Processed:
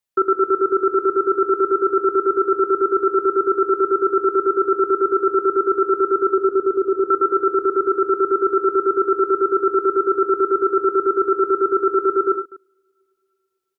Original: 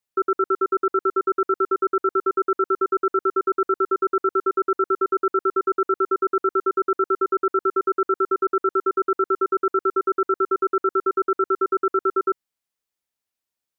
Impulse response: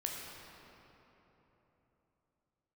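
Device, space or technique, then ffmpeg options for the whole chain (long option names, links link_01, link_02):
keyed gated reverb: -filter_complex "[0:a]asettb=1/sr,asplit=3[link_01][link_02][link_03];[link_01]atrim=end=6.284[link_04];[link_02]atrim=start=6.28:end=7.09,asetpts=PTS-STARTPTS,afade=type=in:duration=0.004:curve=qsin,afade=type=out:start_time=0.806:duration=0.004:curve=qsin,lowpass=frequency=1100:width=0.5412,lowpass=frequency=1100:width=1.3066[link_05];[link_03]atrim=start=7.086[link_06];[link_04][link_05]acrossfade=duration=0.004:curve1=hsin:curve2=qsin[link_07];[link_07][link_06]acrossfade=duration=0.004:curve1=qsin:curve2=hsin,asplit=2[link_08][link_09];[link_09]adelay=244.9,volume=-17dB,highshelf=frequency=4000:gain=-5.51[link_10];[link_08][link_10]amix=inputs=2:normalize=0,asplit=3[link_11][link_12][link_13];[1:a]atrim=start_sample=2205[link_14];[link_12][link_14]afir=irnorm=-1:irlink=0[link_15];[link_13]apad=whole_len=618839[link_16];[link_15][link_16]sidechaingate=range=-33dB:threshold=-31dB:ratio=16:detection=peak,volume=-2dB[link_17];[link_11][link_17]amix=inputs=2:normalize=0"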